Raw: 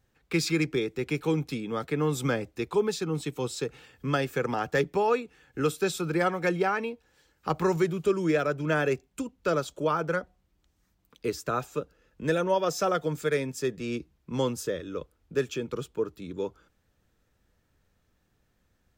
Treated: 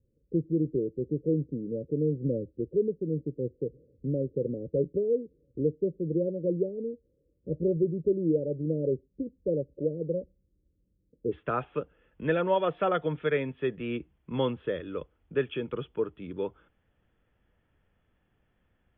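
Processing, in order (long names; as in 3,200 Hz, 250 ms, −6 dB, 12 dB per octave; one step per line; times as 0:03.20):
Chebyshev low-pass filter 570 Hz, order 8, from 0:11.31 3,400 Hz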